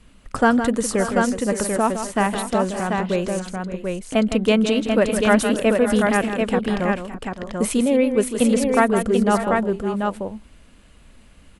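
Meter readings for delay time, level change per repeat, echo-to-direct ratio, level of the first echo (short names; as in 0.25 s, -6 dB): 0.161 s, no steady repeat, -2.5 dB, -9.5 dB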